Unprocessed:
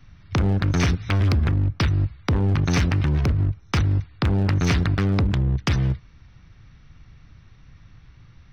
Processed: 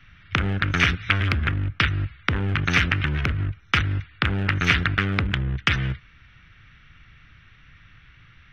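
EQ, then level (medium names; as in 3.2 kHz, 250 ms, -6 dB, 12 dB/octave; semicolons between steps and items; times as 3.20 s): high-order bell 2.1 kHz +14 dB; -4.5 dB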